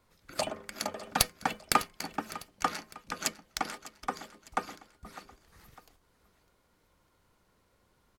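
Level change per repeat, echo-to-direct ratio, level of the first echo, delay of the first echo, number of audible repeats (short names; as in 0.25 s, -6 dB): -6.5 dB, -16.0 dB, -17.0 dB, 0.603 s, 2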